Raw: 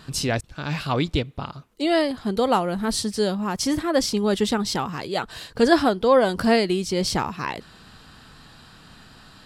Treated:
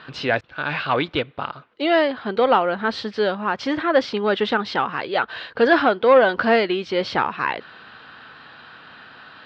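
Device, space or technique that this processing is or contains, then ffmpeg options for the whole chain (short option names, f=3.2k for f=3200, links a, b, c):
overdrive pedal into a guitar cabinet: -filter_complex "[0:a]asplit=2[a][b];[b]highpass=f=720:p=1,volume=16dB,asoftclip=type=tanh:threshold=-2dB[c];[a][c]amix=inputs=2:normalize=0,lowpass=f=5.1k:p=1,volume=-6dB,highpass=88,equalizer=f=180:t=q:w=4:g=-4,equalizer=f=520:t=q:w=4:g=3,equalizer=f=1.5k:t=q:w=4:g=5,lowpass=f=3.5k:w=0.5412,lowpass=f=3.5k:w=1.3066,volume=-3.5dB"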